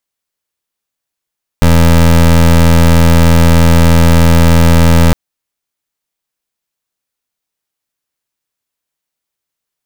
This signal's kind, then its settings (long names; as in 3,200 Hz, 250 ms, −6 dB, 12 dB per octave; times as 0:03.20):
pulse wave 83.2 Hz, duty 23% −5.5 dBFS 3.51 s